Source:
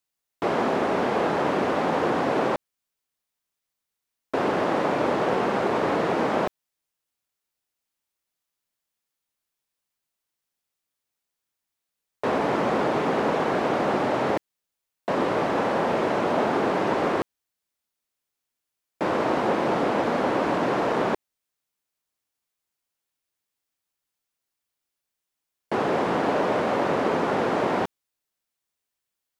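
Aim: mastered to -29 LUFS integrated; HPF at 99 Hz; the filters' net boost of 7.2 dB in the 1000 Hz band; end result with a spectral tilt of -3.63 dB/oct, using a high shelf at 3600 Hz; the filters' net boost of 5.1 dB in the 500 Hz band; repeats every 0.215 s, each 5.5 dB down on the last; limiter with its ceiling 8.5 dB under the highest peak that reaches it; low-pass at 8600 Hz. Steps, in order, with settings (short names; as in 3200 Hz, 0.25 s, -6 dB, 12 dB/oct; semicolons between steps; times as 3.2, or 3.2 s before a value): HPF 99 Hz; LPF 8600 Hz; bell 500 Hz +4 dB; bell 1000 Hz +7.5 dB; high shelf 3600 Hz +3.5 dB; limiter -14 dBFS; feedback echo 0.215 s, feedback 53%, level -5.5 dB; gain -7 dB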